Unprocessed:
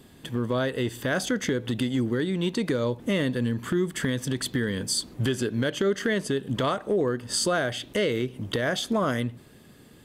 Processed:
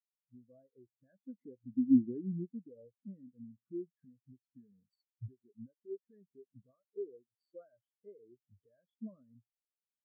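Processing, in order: Doppler pass-by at 2.01 s, 8 m/s, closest 4.6 m; recorder AGC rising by 24 dB/s; spectral contrast expander 4:1

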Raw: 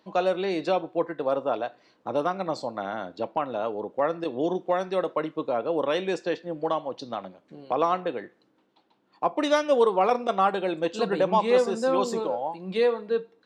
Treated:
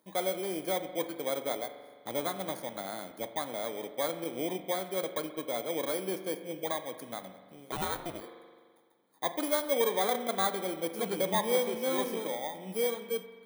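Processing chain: bit-reversed sample order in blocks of 16 samples; spring tank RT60 1.7 s, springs 42 ms, chirp 55 ms, DRR 9.5 dB; 7.71–8.20 s: ring modulator 360 Hz -> 140 Hz; trim -7.5 dB

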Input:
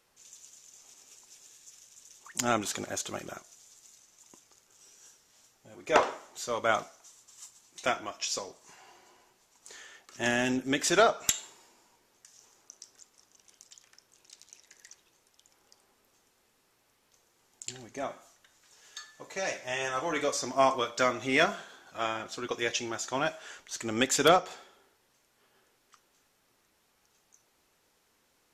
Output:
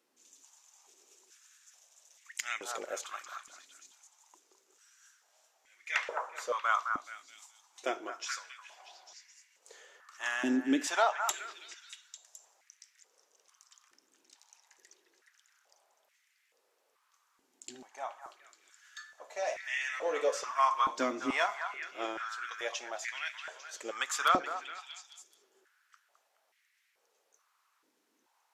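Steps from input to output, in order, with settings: repeats whose band climbs or falls 212 ms, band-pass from 1.2 kHz, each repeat 0.7 oct, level -4 dB; step-sequenced high-pass 2.3 Hz 280–2000 Hz; trim -8 dB

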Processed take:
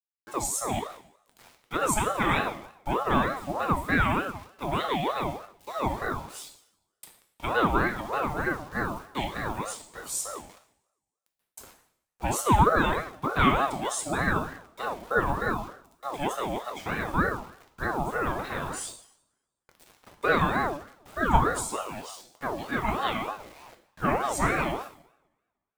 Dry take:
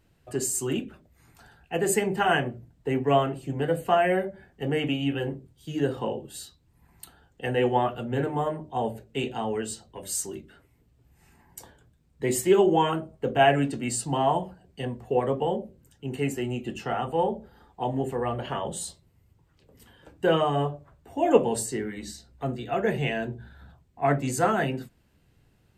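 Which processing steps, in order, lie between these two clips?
word length cut 8-bit, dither none; two-slope reverb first 0.64 s, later 1.6 s, from -26 dB, DRR 3.5 dB; ring modulator with a swept carrier 700 Hz, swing 40%, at 3.3 Hz

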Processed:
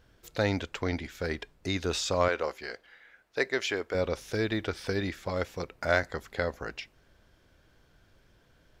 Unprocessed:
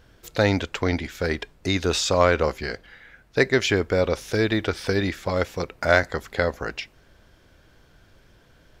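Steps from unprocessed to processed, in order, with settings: 2.28–3.95 s: tone controls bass -15 dB, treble -1 dB; trim -7.5 dB

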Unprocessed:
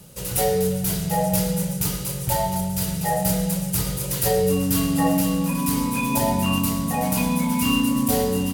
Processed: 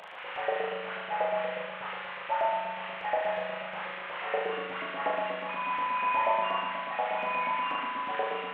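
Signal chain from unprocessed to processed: one-bit delta coder 16 kbps, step -30.5 dBFS; LFO high-pass saw up 8.3 Hz 570–2200 Hz; flutter echo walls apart 6.5 m, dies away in 0.86 s; trim -8 dB

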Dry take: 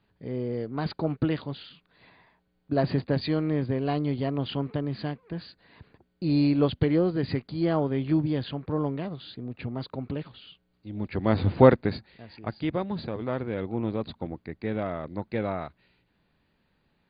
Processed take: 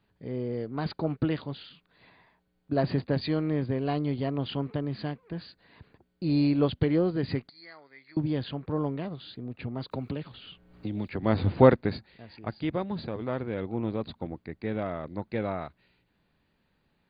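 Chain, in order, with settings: 7.49–8.17 s: two resonant band-passes 3 kHz, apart 1.1 oct; 9.91–11.23 s: three bands compressed up and down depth 100%; trim -1.5 dB

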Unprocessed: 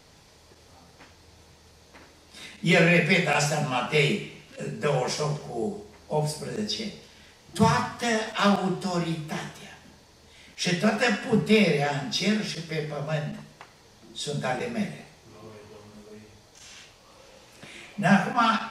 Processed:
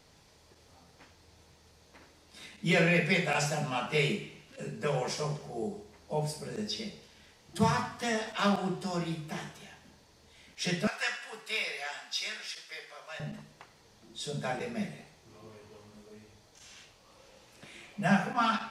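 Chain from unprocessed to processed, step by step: 10.87–13.20 s: high-pass 1.1 kHz 12 dB/octave; trim -6 dB

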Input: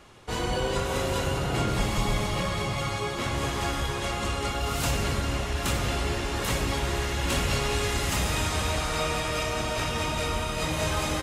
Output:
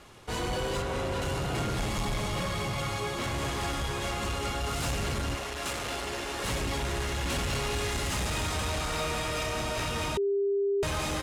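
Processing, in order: CVSD coder 64 kbps; 0.82–1.22 s: treble shelf 4 kHz -9 dB; saturation -26 dBFS, distortion -13 dB; 5.35–6.44 s: tone controls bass -11 dB, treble 0 dB; 10.17–10.83 s: bleep 399 Hz -24 dBFS

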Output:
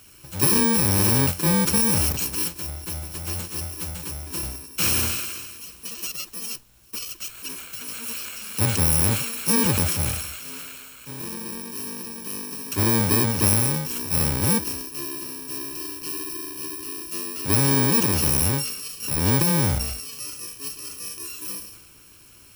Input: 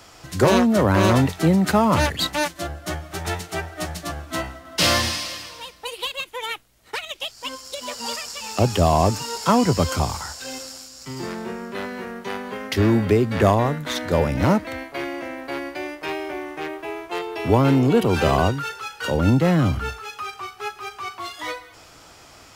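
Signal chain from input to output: bit-reversed sample order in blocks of 64 samples; transient shaper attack -1 dB, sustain +8 dB; trim -3 dB

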